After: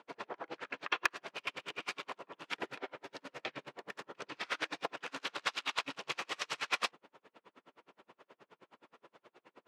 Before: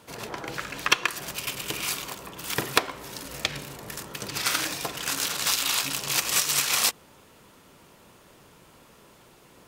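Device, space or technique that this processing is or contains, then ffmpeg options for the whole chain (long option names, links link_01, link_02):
helicopter radio: -filter_complex "[0:a]highpass=320,lowpass=2600,aeval=exprs='val(0)*pow(10,-38*(0.5-0.5*cos(2*PI*9.5*n/s))/20)':channel_layout=same,asoftclip=type=hard:threshold=-19dB,asettb=1/sr,asplit=3[link_01][link_02][link_03];[link_01]atrim=end=2.464[link_04];[link_02]atrim=start=2.46:end=3.19,asetpts=PTS-STARTPTS,afade=type=in:duration=0.004:curve=qsin,afade=type=out:start_time=0.726:duration=0.004:curve=qsin,bandreject=frequency=1100:width=6.6[link_05];[link_03]atrim=start=3.186[link_06];[link_04][link_05]acrossfade=duration=0.004:curve1=hsin:curve2=qsin[link_07];[link_07][link_06]acrossfade=duration=0.004:curve1=qsin:curve2=hsin,volume=1dB"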